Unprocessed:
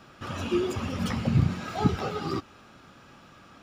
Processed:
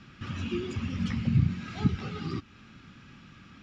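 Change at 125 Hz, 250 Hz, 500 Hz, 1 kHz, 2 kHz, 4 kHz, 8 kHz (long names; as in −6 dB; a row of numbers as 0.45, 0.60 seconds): −0.5 dB, −2.0 dB, −9.0 dB, −10.5 dB, −3.5 dB, −4.0 dB, can't be measured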